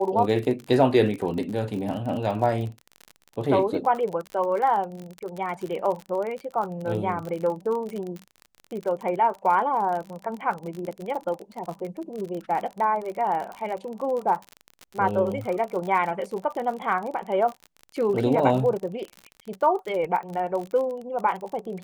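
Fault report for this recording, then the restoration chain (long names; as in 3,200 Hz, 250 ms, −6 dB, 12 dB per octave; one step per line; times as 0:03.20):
surface crackle 44 per second −30 dBFS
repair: click removal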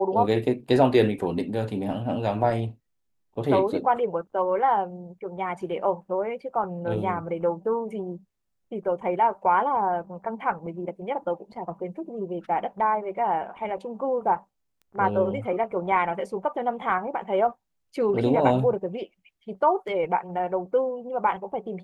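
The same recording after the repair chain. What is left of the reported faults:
none of them is left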